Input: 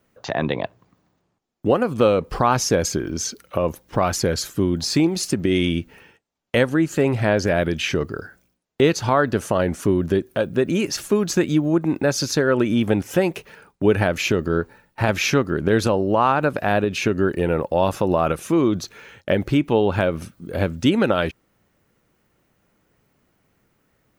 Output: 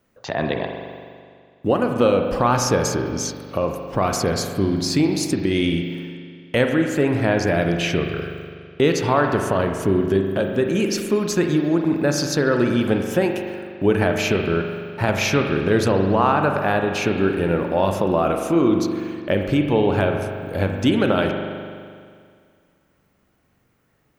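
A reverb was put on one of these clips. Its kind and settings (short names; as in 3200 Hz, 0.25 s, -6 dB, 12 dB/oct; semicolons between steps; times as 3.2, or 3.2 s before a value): spring tank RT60 2.1 s, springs 41 ms, chirp 30 ms, DRR 3.5 dB; gain -1 dB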